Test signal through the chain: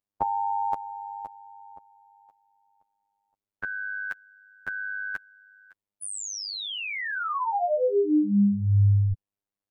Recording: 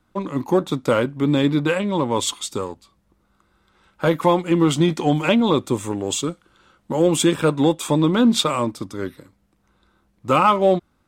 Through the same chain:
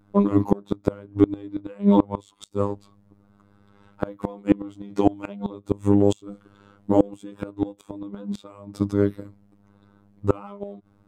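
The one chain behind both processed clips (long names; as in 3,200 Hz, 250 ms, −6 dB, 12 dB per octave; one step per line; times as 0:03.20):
phases set to zero 101 Hz
gate with flip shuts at −9 dBFS, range −26 dB
tilt shelving filter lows +8 dB, about 1,100 Hz
level +2.5 dB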